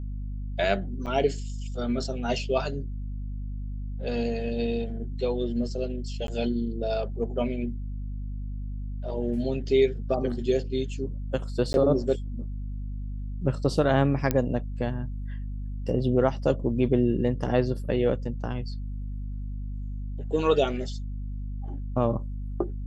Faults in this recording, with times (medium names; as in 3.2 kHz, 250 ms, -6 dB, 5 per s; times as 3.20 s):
hum 50 Hz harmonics 5 -33 dBFS
1.06–1.07 s: dropout 7.7 ms
6.27–6.28 s: dropout 12 ms
11.73–11.74 s: dropout 11 ms
14.31 s: pop -10 dBFS